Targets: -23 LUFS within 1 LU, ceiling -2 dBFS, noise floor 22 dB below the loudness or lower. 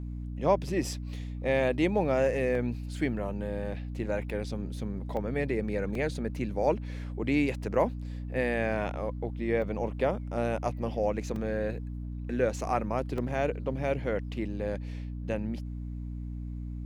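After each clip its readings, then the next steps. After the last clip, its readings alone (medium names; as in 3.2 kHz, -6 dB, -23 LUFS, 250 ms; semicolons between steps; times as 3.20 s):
dropouts 6; longest dropout 2.5 ms; hum 60 Hz; highest harmonic 300 Hz; hum level -34 dBFS; loudness -31.5 LUFS; peak level -11.5 dBFS; loudness target -23.0 LUFS
-> interpolate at 2.55/5.17/5.95/9.62/11.36/13.18 s, 2.5 ms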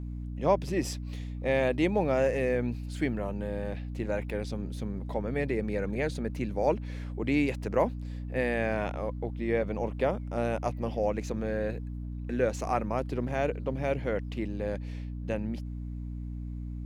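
dropouts 0; hum 60 Hz; highest harmonic 300 Hz; hum level -34 dBFS
-> de-hum 60 Hz, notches 5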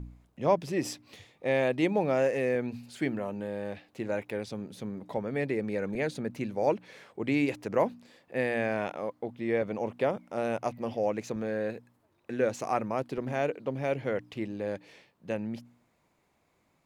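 hum not found; loudness -31.5 LUFS; peak level -12.0 dBFS; loudness target -23.0 LUFS
-> trim +8.5 dB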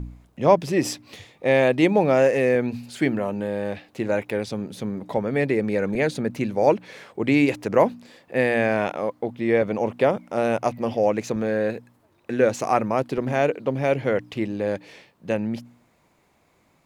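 loudness -23.0 LUFS; peak level -3.5 dBFS; noise floor -63 dBFS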